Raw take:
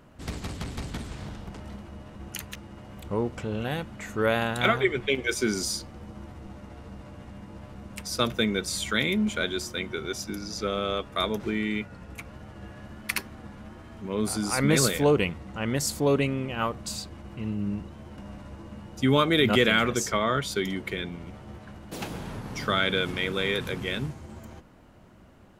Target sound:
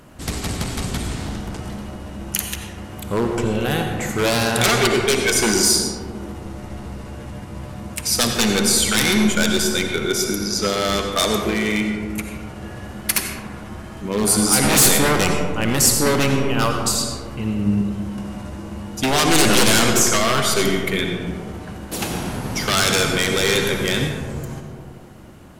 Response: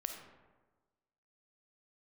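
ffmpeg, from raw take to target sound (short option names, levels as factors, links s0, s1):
-filter_complex "[0:a]aeval=exprs='0.0891*(abs(mod(val(0)/0.0891+3,4)-2)-1)':c=same,crystalizer=i=1.5:c=0[s0];[1:a]atrim=start_sample=2205,asetrate=25137,aresample=44100[s1];[s0][s1]afir=irnorm=-1:irlink=0,volume=2.24"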